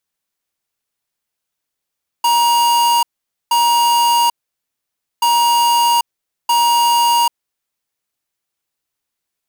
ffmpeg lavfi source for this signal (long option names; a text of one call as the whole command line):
ffmpeg -f lavfi -i "aevalsrc='0.224*(2*lt(mod(946*t,1),0.5)-1)*clip(min(mod(mod(t,2.98),1.27),0.79-mod(mod(t,2.98),1.27))/0.005,0,1)*lt(mod(t,2.98),2.54)':duration=5.96:sample_rate=44100" out.wav